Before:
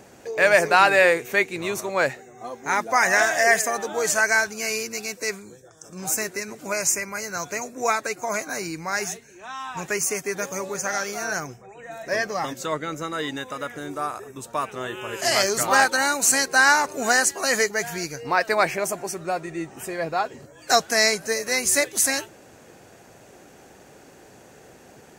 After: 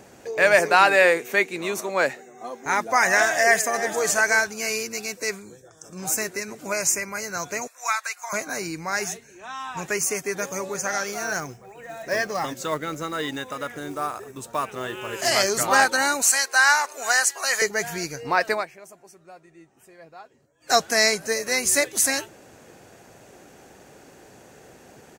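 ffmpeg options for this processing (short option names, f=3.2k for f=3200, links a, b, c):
-filter_complex "[0:a]asettb=1/sr,asplit=3[a][b][c];[a]atrim=end=0.594[d];[b]atrim=start=0.59:end=2.66,asetpts=PTS-STARTPTS,afade=t=in:d=0.004:c=qsin,afade=t=out:st=2.066:d=0.004:c=qsin,highpass=f=170:w=0.5412,highpass=f=170:w=1.3066[e];[c]atrim=start=2.656[f];[d][e]acrossfade=d=0.004:c1=hsin:c2=qsin[g];[g][f]acrossfade=d=0.004:c1=qsin:c2=hsin,asplit=2[h][i];[i]afade=t=in:st=3.39:d=0.01,afade=t=out:st=4.05:d=0.01,aecho=0:1:340|680:0.281838|0.0422757[j];[h][j]amix=inputs=2:normalize=0,asettb=1/sr,asplit=3[k][l][m];[k]atrim=end=7.674[n];[l]atrim=start=7.67:end=8.33,asetpts=PTS-STARTPTS,afade=t=in:d=0.004:c=qsin,afade=t=out:st=0.656:d=0.004:c=qsin,highpass=f=960:w=0.5412,highpass=f=960:w=1.3066[o];[m]atrim=start=8.326[p];[n][o]acrossfade=d=0.004:c1=hsin:c2=qsin[q];[q][p]acrossfade=d=0.004:c1=qsin:c2=hsin,asettb=1/sr,asplit=3[r][s][t];[r]atrim=end=11.074[u];[s]atrim=start=11.07:end=15.3,asetpts=PTS-STARTPTS,afade=t=in:d=0.004:c=qsin,afade=t=out:st=4.226:d=0.004:c=qsin,acrusher=bits=5:mode=log:mix=0:aa=0.000001[v];[t]atrim=start=15.296[w];[u][v]acrossfade=d=0.004:c1=hsin:c2=qsin[x];[x][w]acrossfade=d=0.004:c1=qsin:c2=hsin,asettb=1/sr,asplit=3[y][z][aa];[y]atrim=end=16.224[ab];[z]atrim=start=16.22:end=17.62,asetpts=PTS-STARTPTS,afade=t=in:d=0.004:c=qsin,afade=t=out:st=1.396:d=0.004:c=qsin,highpass=790[ac];[aa]atrim=start=17.616[ad];[ab][ac]acrossfade=d=0.004:c1=hsin:c2=qsin[ae];[ae][ad]acrossfade=d=0.004:c1=qsin:c2=hsin,asplit=3[af][ag][ah];[af]atrim=end=18.66,asetpts=PTS-STARTPTS,afade=t=out:st=18.5:d=0.16:silence=0.105925[ai];[ag]atrim=start=18.66:end=20.6,asetpts=PTS-STARTPTS,volume=-19.5dB[aj];[ah]atrim=start=20.6,asetpts=PTS-STARTPTS,afade=t=in:d=0.16:silence=0.105925[ak];[ai][aj][ak]concat=n=3:v=0:a=1"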